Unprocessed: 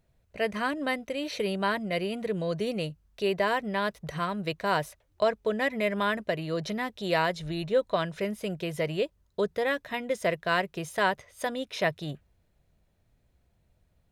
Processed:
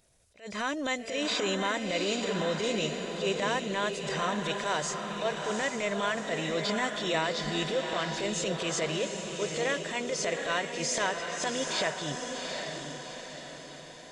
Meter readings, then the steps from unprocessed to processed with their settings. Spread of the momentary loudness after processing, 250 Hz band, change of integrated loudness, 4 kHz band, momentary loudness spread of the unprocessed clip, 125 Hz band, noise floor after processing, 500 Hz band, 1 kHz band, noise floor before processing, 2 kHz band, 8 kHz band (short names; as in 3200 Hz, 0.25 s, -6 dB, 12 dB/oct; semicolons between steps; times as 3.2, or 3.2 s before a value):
7 LU, -1.5 dB, -1.0 dB, +5.0 dB, 6 LU, -2.5 dB, -46 dBFS, -2.5 dB, -2.0 dB, -70 dBFS, -0.5 dB, +13.0 dB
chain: nonlinear frequency compression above 3100 Hz 1.5:1; tone controls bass -8 dB, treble +14 dB; compressor, threshold -31 dBFS, peak gain reduction 11.5 dB; transient shaper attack -10 dB, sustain +2 dB; diffused feedback echo 0.773 s, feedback 50%, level -4.5 dB; attack slew limiter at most 200 dB/s; gain +5.5 dB